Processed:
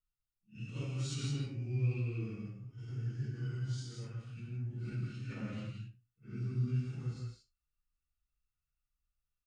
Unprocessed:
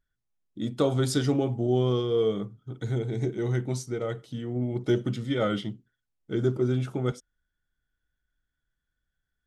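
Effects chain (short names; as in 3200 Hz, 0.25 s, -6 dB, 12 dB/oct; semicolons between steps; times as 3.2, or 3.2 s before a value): phase scrambler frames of 0.2 s; passive tone stack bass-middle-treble 6-0-2; formant shift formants -4 st; on a send: echo 77 ms -23.5 dB; on the sum: non-linear reverb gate 0.2 s rising, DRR 2.5 dB; gain +5.5 dB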